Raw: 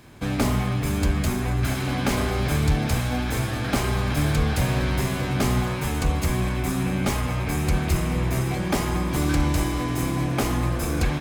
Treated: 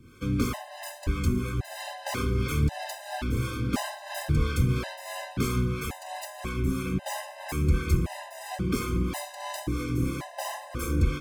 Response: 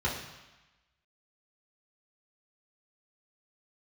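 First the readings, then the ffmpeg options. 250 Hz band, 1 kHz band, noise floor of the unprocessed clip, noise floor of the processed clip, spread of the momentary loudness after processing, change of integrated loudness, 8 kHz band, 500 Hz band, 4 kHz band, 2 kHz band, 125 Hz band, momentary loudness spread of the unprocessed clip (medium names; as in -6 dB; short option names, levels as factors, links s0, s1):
-6.0 dB, -6.5 dB, -28 dBFS, -45 dBFS, 10 LU, -6.0 dB, -6.5 dB, -6.5 dB, -6.5 dB, -7.0 dB, -5.5 dB, 3 LU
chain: -filter_complex "[0:a]acrossover=split=420[s0][s1];[s0]aeval=exprs='val(0)*(1-0.7/2+0.7/2*cos(2*PI*3*n/s))':c=same[s2];[s1]aeval=exprs='val(0)*(1-0.7/2-0.7/2*cos(2*PI*3*n/s))':c=same[s3];[s2][s3]amix=inputs=2:normalize=0,asplit=2[s4][s5];[1:a]atrim=start_sample=2205,asetrate=39690,aresample=44100[s6];[s5][s6]afir=irnorm=-1:irlink=0,volume=0.0596[s7];[s4][s7]amix=inputs=2:normalize=0,afftfilt=real='re*gt(sin(2*PI*0.93*pts/sr)*(1-2*mod(floor(b*sr/1024/520),2)),0)':imag='im*gt(sin(2*PI*0.93*pts/sr)*(1-2*mod(floor(b*sr/1024/520),2)),0)':win_size=1024:overlap=0.75"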